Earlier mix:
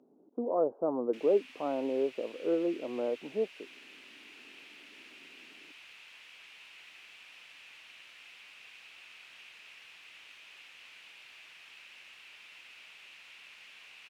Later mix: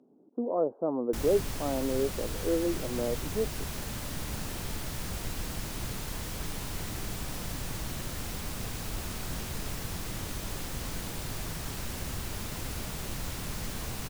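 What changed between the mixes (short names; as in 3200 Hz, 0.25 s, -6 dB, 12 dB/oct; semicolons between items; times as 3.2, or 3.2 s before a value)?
background: remove band-pass 2600 Hz, Q 4.3; master: add tone controls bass +7 dB, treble +3 dB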